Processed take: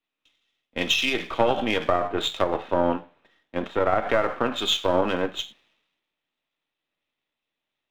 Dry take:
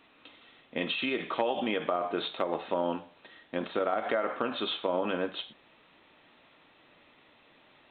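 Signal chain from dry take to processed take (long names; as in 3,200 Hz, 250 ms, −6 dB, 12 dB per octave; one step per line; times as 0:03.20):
gain on one half-wave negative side −7 dB
multiband upward and downward expander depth 100%
level +8 dB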